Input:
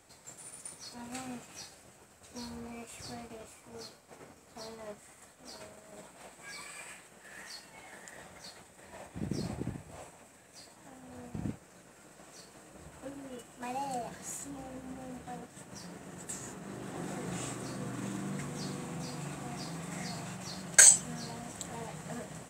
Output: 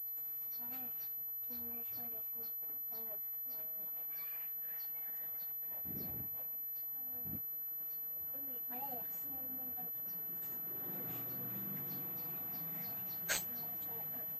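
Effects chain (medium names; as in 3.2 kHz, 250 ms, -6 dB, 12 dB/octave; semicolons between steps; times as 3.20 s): plain phase-vocoder stretch 0.64×; class-D stage that switches slowly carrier 12 kHz; trim -8 dB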